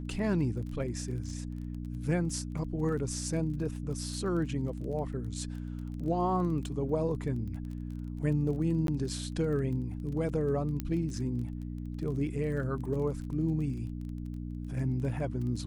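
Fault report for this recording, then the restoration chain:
crackle 21 per s -40 dBFS
hum 60 Hz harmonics 5 -38 dBFS
8.87–8.88 s: dropout 12 ms
10.80 s: pop -19 dBFS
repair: de-click; de-hum 60 Hz, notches 5; interpolate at 8.87 s, 12 ms

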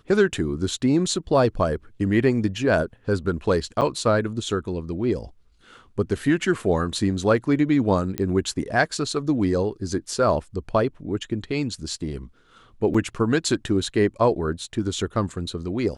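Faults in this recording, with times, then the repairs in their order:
3.81–3.82 s: dropout 8 ms
8.18 s: pop -11 dBFS
12.94–12.95 s: dropout 5.3 ms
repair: de-click; interpolate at 3.81 s, 8 ms; interpolate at 12.94 s, 5.3 ms

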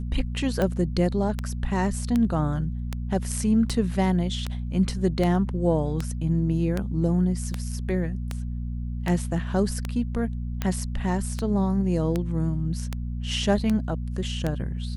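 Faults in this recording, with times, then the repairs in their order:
hum 60 Hz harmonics 4 -30 dBFS
tick 78 rpm -13 dBFS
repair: de-click; de-hum 60 Hz, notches 4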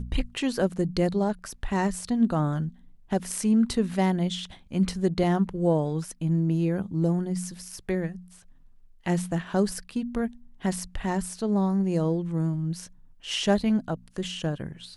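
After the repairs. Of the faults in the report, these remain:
nothing left

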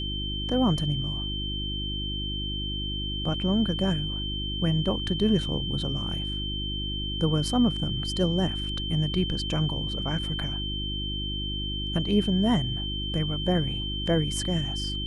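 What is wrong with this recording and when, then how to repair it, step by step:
hum 50 Hz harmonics 7 -33 dBFS
whine 3.1 kHz -32 dBFS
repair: de-hum 50 Hz, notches 7; band-stop 3.1 kHz, Q 30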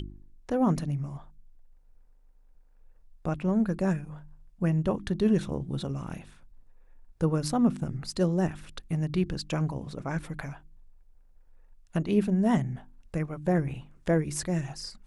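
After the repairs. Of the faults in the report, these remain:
nothing left

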